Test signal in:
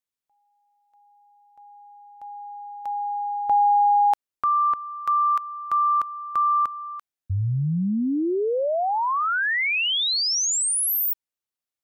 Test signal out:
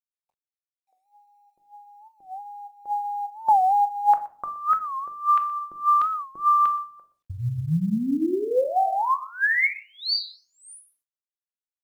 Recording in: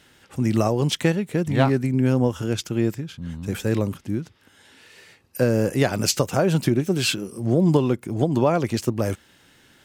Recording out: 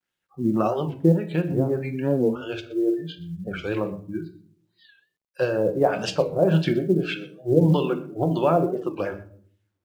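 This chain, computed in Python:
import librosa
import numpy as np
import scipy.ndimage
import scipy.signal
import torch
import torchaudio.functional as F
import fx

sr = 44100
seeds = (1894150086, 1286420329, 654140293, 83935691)

p1 = fx.noise_reduce_blind(x, sr, reduce_db=30)
p2 = fx.filter_lfo_lowpass(p1, sr, shape='sine', hz=1.7, low_hz=340.0, high_hz=3600.0, q=2.1)
p3 = fx.hum_notches(p2, sr, base_hz=50, count=9)
p4 = p3 + fx.echo_single(p3, sr, ms=122, db=-19.5, dry=0)
p5 = fx.dynamic_eq(p4, sr, hz=120.0, q=3.4, threshold_db=-33.0, ratio=4.0, max_db=-3)
p6 = fx.room_shoebox(p5, sr, seeds[0], volume_m3=560.0, walls='furnished', distance_m=0.95)
p7 = fx.quant_companded(p6, sr, bits=8)
p8 = fx.record_warp(p7, sr, rpm=45.0, depth_cents=160.0)
y = p8 * 10.0 ** (-2.5 / 20.0)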